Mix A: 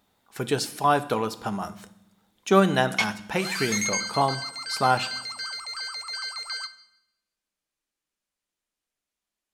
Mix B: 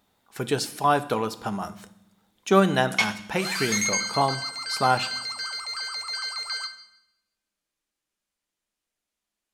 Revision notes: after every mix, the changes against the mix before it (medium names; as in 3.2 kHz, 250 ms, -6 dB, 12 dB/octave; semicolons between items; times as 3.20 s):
background: send +6.0 dB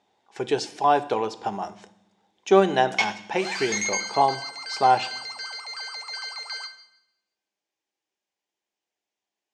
background: remove low-pass 11 kHz 12 dB/octave; master: add cabinet simulation 150–6700 Hz, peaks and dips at 160 Hz -9 dB, 240 Hz -6 dB, 380 Hz +5 dB, 810 Hz +7 dB, 1.3 kHz -8 dB, 4.2 kHz -4 dB